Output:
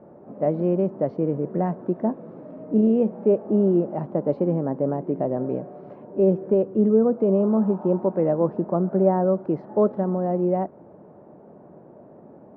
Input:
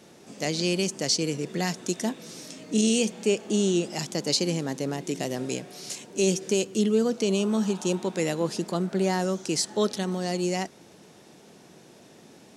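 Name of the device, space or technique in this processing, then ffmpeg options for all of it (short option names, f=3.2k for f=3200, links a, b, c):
under water: -af "lowpass=f=1.1k:w=0.5412,lowpass=f=1.1k:w=1.3066,equalizer=f=590:t=o:w=0.22:g=8,volume=4.5dB"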